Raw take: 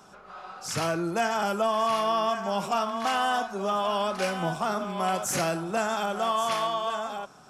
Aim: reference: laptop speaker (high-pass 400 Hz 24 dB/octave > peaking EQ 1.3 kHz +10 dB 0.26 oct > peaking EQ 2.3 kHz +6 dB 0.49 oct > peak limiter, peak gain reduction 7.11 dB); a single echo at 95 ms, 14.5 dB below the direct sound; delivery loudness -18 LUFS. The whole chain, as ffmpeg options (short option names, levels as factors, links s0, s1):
-af "highpass=f=400:w=0.5412,highpass=f=400:w=1.3066,equalizer=f=1300:t=o:w=0.26:g=10,equalizer=f=2300:t=o:w=0.49:g=6,aecho=1:1:95:0.188,volume=2.99,alimiter=limit=0.355:level=0:latency=1"